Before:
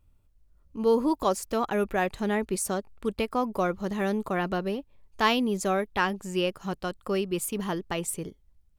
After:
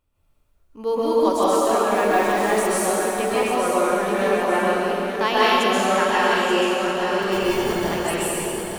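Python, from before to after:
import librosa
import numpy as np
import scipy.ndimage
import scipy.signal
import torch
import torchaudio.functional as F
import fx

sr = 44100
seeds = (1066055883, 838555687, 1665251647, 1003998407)

y = fx.delta_hold(x, sr, step_db=-37.0, at=(1.95, 2.49))
y = fx.bass_treble(y, sr, bass_db=-12, treble_db=-2)
y = fx.sample_hold(y, sr, seeds[0], rate_hz=1300.0, jitter_pct=0, at=(7.22, 7.72))
y = fx.echo_feedback(y, sr, ms=882, feedback_pct=36, wet_db=-7.5)
y = fx.rev_plate(y, sr, seeds[1], rt60_s=2.5, hf_ratio=0.95, predelay_ms=115, drr_db=-9.0)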